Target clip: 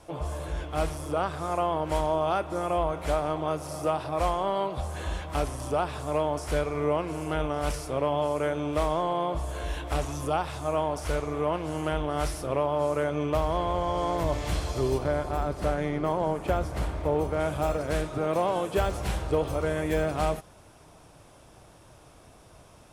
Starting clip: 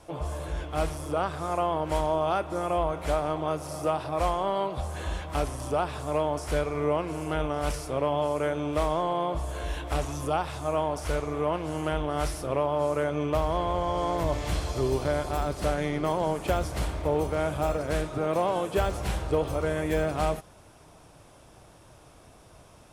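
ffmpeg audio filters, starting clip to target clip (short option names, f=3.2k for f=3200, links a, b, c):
-filter_complex "[0:a]asplit=3[a][b][c];[a]afade=t=out:st=14.97:d=0.02[d];[b]adynamicequalizer=threshold=0.00447:dfrequency=2400:dqfactor=0.7:tfrequency=2400:tqfactor=0.7:attack=5:release=100:ratio=0.375:range=4:mode=cutabove:tftype=highshelf,afade=t=in:st=14.97:d=0.02,afade=t=out:st=17.39:d=0.02[e];[c]afade=t=in:st=17.39:d=0.02[f];[d][e][f]amix=inputs=3:normalize=0"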